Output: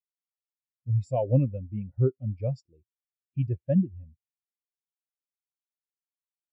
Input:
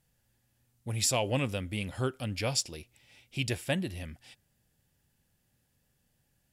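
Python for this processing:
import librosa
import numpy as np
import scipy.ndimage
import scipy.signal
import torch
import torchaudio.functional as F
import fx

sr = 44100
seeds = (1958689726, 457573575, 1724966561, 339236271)

y = fx.high_shelf(x, sr, hz=2700.0, db=-11.5)
y = fx.spectral_expand(y, sr, expansion=2.5)
y = y * 10.0 ** (7.5 / 20.0)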